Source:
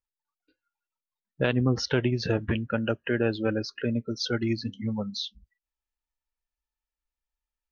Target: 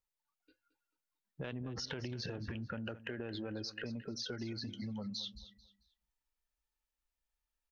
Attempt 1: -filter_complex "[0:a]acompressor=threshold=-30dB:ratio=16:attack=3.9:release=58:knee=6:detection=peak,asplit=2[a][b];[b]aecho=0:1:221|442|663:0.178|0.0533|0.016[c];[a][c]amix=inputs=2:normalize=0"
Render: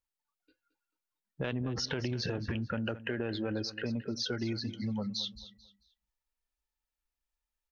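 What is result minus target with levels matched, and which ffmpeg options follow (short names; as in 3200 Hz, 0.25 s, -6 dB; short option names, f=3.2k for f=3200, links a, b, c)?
compressor: peak gain reduction -8 dB
-filter_complex "[0:a]acompressor=threshold=-38.5dB:ratio=16:attack=3.9:release=58:knee=6:detection=peak,asplit=2[a][b];[b]aecho=0:1:221|442|663:0.178|0.0533|0.016[c];[a][c]amix=inputs=2:normalize=0"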